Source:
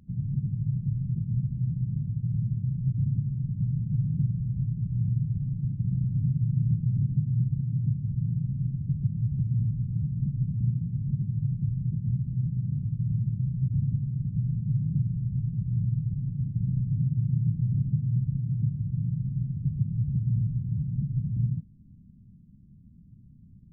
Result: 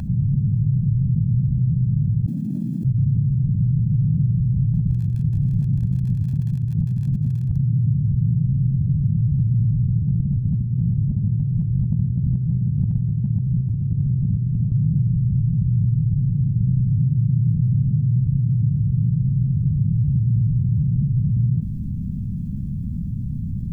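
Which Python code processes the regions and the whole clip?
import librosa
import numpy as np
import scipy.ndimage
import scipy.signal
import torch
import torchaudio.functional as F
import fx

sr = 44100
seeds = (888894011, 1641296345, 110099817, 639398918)

y = fx.chain(x, sr, fx.steep_highpass(hz=260.0, slope=36),
    fx.env_flatten(amount_pct=100), at=(2.26, 2.85))
y = fx.over_compress(y, sr, threshold_db=-31.0, ratio=-0.5, at=(4.71, 7.59), fade=0.02)
y = fx.dmg_crackle(y, sr, seeds[0], per_s=53.0, level_db=-49.0, at=(4.71, 7.59), fade=0.02)
y = fx.chain(y, sr, fx.over_compress(threshold_db=-32.0, ratio=-0.5),
    fx.echo_feedback(ms=61, feedback_pct=56, wet_db=-22.5), at=(9.99, 14.72))
y = y + 0.93 * np.pad(y, (int(1.2 * sr / 1000.0), 0))[:len(y)]
y = fx.env_flatten(y, sr, amount_pct=70)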